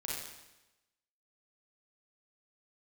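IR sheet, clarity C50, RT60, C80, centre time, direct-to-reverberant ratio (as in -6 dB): -2.0 dB, 1.0 s, 2.5 dB, 76 ms, -5.0 dB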